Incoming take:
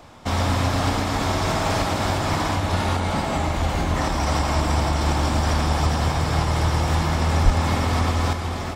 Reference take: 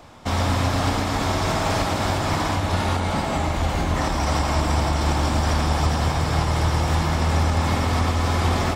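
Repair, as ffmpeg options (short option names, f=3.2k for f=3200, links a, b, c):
-filter_complex "[0:a]asplit=3[a][b][c];[a]afade=t=out:st=7.44:d=0.02[d];[b]highpass=f=140:w=0.5412,highpass=f=140:w=1.3066,afade=t=in:st=7.44:d=0.02,afade=t=out:st=7.56:d=0.02[e];[c]afade=t=in:st=7.56:d=0.02[f];[d][e][f]amix=inputs=3:normalize=0,asetnsamples=n=441:p=0,asendcmd='8.33 volume volume 6.5dB',volume=0dB"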